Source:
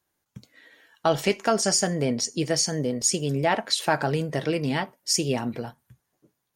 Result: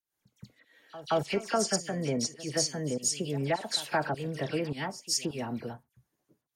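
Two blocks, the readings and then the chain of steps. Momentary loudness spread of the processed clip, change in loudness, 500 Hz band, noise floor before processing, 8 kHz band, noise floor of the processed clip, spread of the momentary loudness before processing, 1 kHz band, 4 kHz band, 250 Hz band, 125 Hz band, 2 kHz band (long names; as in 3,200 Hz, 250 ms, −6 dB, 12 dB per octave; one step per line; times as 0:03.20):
8 LU, −6.5 dB, −6.0 dB, −79 dBFS, −6.5 dB, −84 dBFS, 6 LU, −6.0 dB, −6.0 dB, −6.5 dB, −6.5 dB, −6.5 dB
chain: fake sidechain pumping 103 BPM, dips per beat 1, −21 dB, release 207 ms
all-pass dispersion lows, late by 66 ms, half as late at 2,500 Hz
backwards echo 174 ms −17.5 dB
level −5.5 dB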